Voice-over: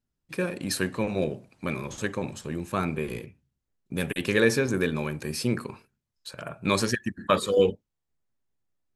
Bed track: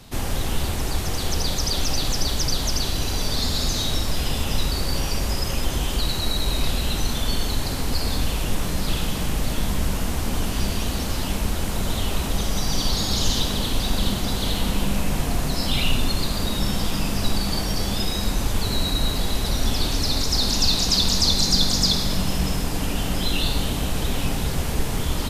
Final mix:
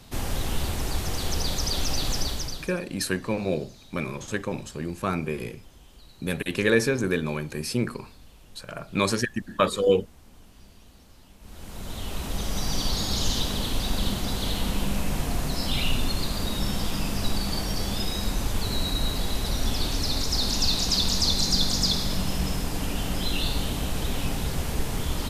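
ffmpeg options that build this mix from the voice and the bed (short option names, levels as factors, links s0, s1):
-filter_complex "[0:a]adelay=2300,volume=1.06[s0];[1:a]volume=10,afade=t=out:st=2.17:d=0.56:silence=0.0630957,afade=t=in:st=11.39:d=1.26:silence=0.0668344[s1];[s0][s1]amix=inputs=2:normalize=0"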